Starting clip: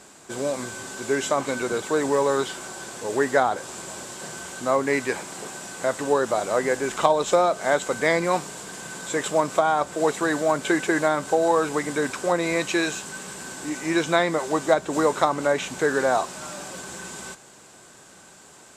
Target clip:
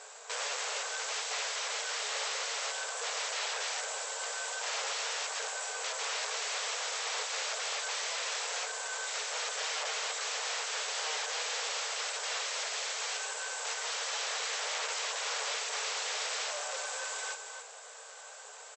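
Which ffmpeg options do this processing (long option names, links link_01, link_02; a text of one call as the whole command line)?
ffmpeg -i in.wav -filter_complex "[0:a]asplit=2[link_01][link_02];[link_02]aecho=0:1:274:0.398[link_03];[link_01][link_03]amix=inputs=2:normalize=0,alimiter=limit=-14.5dB:level=0:latency=1:release=41,acrusher=bits=4:mode=log:mix=0:aa=0.000001,asplit=2[link_04][link_05];[link_05]adelay=15,volume=-11dB[link_06];[link_04][link_06]amix=inputs=2:normalize=0,aeval=exprs='(mod(26.6*val(0)+1,2)-1)/26.6':channel_layout=same,afftfilt=real='re*between(b*sr/4096,410,8100)':imag='im*between(b*sr/4096,410,8100)':win_size=4096:overlap=0.75" out.wav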